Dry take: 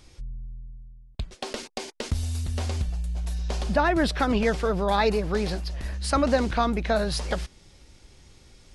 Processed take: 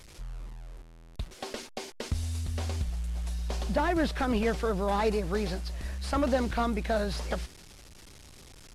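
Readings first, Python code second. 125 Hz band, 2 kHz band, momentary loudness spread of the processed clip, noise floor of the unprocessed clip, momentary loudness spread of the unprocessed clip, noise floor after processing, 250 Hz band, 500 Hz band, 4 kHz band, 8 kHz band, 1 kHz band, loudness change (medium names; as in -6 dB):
-4.0 dB, -5.5 dB, 17 LU, -56 dBFS, 17 LU, -51 dBFS, -4.0 dB, -4.5 dB, -6.0 dB, -5.0 dB, -5.5 dB, -4.5 dB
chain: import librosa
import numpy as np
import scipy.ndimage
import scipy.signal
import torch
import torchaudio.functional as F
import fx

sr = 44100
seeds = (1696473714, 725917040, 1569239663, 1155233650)

y = fx.delta_mod(x, sr, bps=64000, step_db=-40.5)
y = F.gain(torch.from_numpy(y), -4.0).numpy()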